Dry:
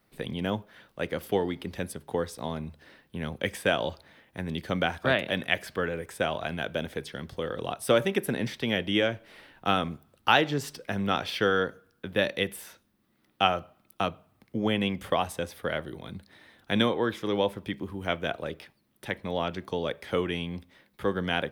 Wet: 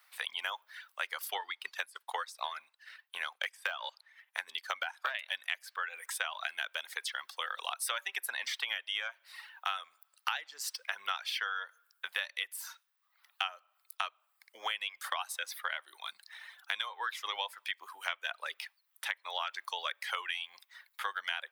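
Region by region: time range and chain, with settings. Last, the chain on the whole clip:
1.34–5.15 de-esser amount 100% + transient shaper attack +5 dB, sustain -7 dB + high shelf 12000 Hz -5 dB
whole clip: reverb removal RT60 0.83 s; HPF 1000 Hz 24 dB/oct; compressor 12:1, threshold -39 dBFS; gain +7.5 dB

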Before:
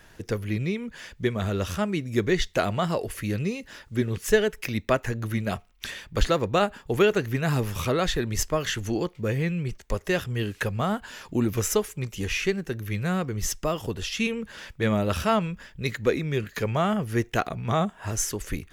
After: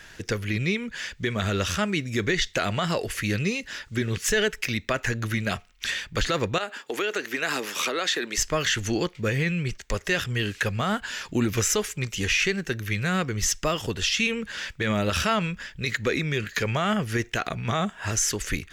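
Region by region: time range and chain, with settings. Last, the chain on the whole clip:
6.58–8.38 HPF 270 Hz 24 dB/oct + compressor 10:1, threshold -26 dBFS
whole clip: band shelf 3300 Hz +8 dB 2.8 oct; limiter -14.5 dBFS; gain +1 dB

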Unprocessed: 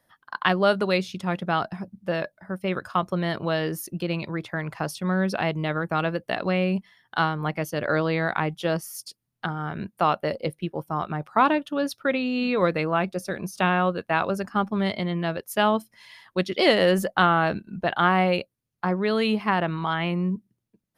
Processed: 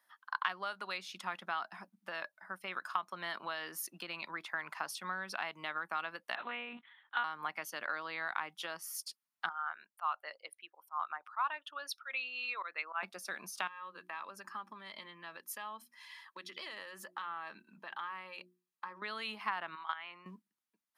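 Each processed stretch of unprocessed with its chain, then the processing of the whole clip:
6.35–7.24 block floating point 5-bit + monotone LPC vocoder at 8 kHz 240 Hz
9.49–13.03 formant sharpening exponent 1.5 + HPF 960 Hz + auto swell 0.101 s
13.67–19.02 notches 60/120/180/240/300/360 Hz + compressor 16:1, threshold -31 dBFS + notch comb 720 Hz
19.75–20.26 HPF 880 Hz 6 dB/oct + air absorption 110 m + level quantiser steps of 14 dB
whole clip: HPF 220 Hz 24 dB/oct; compressor 10:1, threshold -27 dBFS; resonant low shelf 710 Hz -12.5 dB, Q 1.5; gain -4.5 dB

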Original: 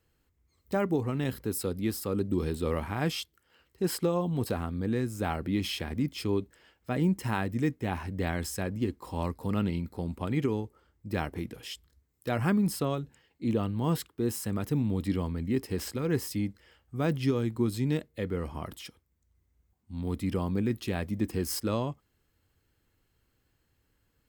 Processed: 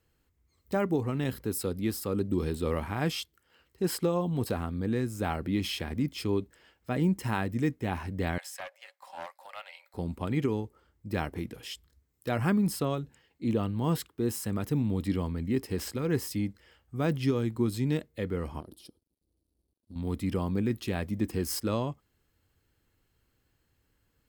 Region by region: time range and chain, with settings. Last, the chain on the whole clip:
8.38–9.94 rippled Chebyshev high-pass 540 Hz, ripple 6 dB + Doppler distortion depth 0.17 ms
18.6–19.96 G.711 law mismatch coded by A + EQ curve 160 Hz 0 dB, 320 Hz +9 dB, 530 Hz +1 dB, 2000 Hz -19 dB, 4400 Hz +2 dB, 7000 Hz -11 dB, 10000 Hz +5 dB, 15000 Hz -8 dB + compressor 12:1, threshold -41 dBFS
whole clip: dry

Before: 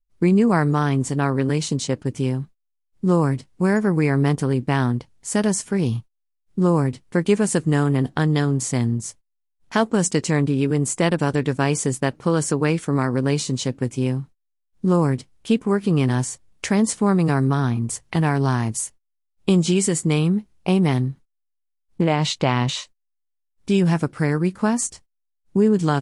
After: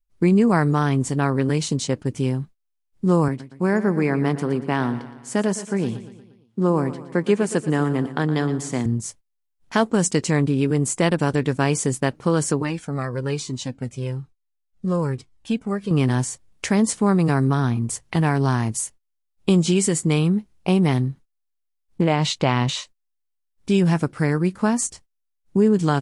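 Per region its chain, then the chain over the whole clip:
3.28–8.86 HPF 180 Hz + high shelf 4400 Hz -8.5 dB + feedback echo 0.117 s, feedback 53%, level -13.5 dB
12.62–15.91 LPF 9900 Hz + cascading flanger falling 1.1 Hz
whole clip: dry

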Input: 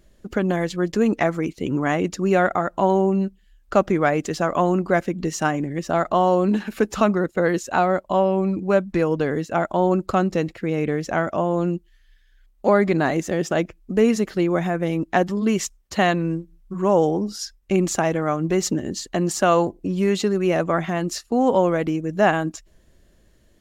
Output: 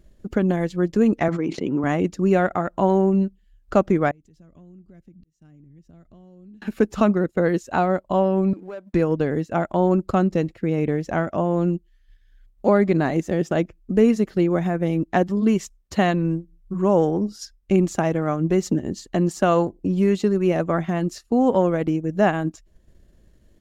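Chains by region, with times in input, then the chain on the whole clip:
1.28–1.84 HPF 200 Hz + air absorption 110 m + sustainer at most 41 dB/s
4.11–6.62 passive tone stack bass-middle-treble 10-0-1 + auto swell 0.756 s + compressor 3:1, threshold -48 dBFS
8.53–8.94 HPF 390 Hz + sample leveller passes 1 + compressor, threshold -31 dBFS
whole clip: low shelf 460 Hz +8 dB; transient shaper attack +1 dB, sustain -5 dB; gain -4.5 dB

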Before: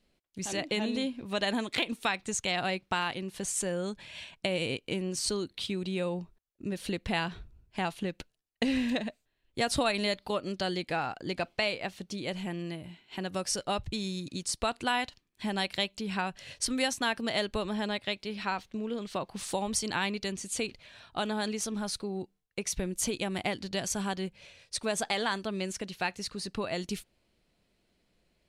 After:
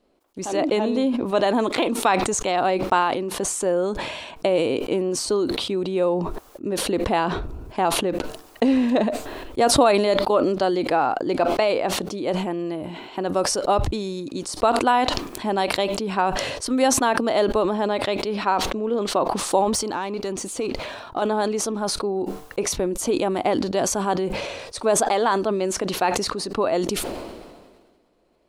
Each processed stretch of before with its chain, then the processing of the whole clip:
19.64–21.22 compressor 4:1, threshold -35 dBFS + sample leveller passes 1
whole clip: band shelf 570 Hz +12.5 dB 2.7 oct; sustainer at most 36 dB/s

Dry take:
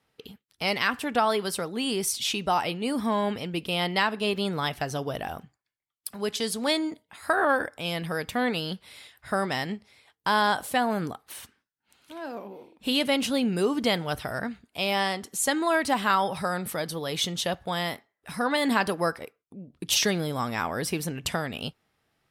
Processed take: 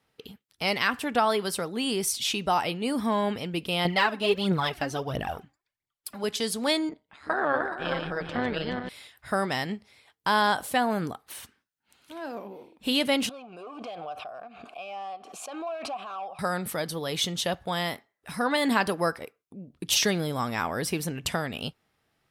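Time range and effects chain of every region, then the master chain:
3.85–6.24 high shelf 5800 Hz -7 dB + phaser 1.5 Hz, delay 3.9 ms, feedback 62%
6.89–8.89 regenerating reverse delay 0.212 s, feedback 56%, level -4.5 dB + AM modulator 140 Hz, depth 45% + air absorption 140 m
13.29–16.39 hard clip -23 dBFS + vowel filter a + backwards sustainer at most 44 dB/s
whole clip: dry

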